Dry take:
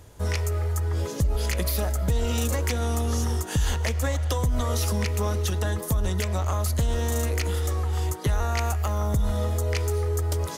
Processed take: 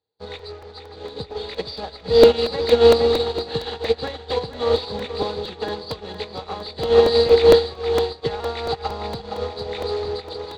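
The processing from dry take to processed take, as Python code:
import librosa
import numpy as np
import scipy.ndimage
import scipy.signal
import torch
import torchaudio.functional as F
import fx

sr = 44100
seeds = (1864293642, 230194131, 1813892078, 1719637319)

p1 = fx.freq_compress(x, sr, knee_hz=3300.0, ratio=4.0)
p2 = scipy.signal.sosfilt(scipy.signal.butter(2, 150.0, 'highpass', fs=sr, output='sos'), p1)
p3 = fx.high_shelf(p2, sr, hz=3700.0, db=12.0)
p4 = fx.fuzz(p3, sr, gain_db=29.0, gate_db=-37.0)
p5 = p3 + F.gain(torch.from_numpy(p4), -3.0).numpy()
p6 = fx.air_absorb(p5, sr, metres=120.0)
p7 = fx.small_body(p6, sr, hz=(460.0, 790.0), ring_ms=75, db=16)
p8 = p7 + fx.echo_feedback(p7, sr, ms=465, feedback_pct=60, wet_db=-7, dry=0)
p9 = fx.buffer_crackle(p8, sr, first_s=0.39, period_s=0.23, block=128, kind='repeat')
p10 = fx.upward_expand(p9, sr, threshold_db=-29.0, expansion=2.5)
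y = F.gain(torch.from_numpy(p10), -1.0).numpy()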